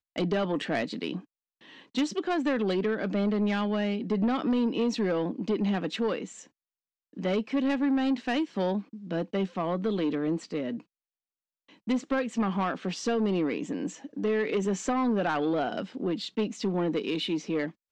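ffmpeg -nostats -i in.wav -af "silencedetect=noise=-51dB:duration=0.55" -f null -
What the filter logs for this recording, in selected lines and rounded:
silence_start: 6.47
silence_end: 7.13 | silence_duration: 0.66
silence_start: 10.82
silence_end: 11.69 | silence_duration: 0.87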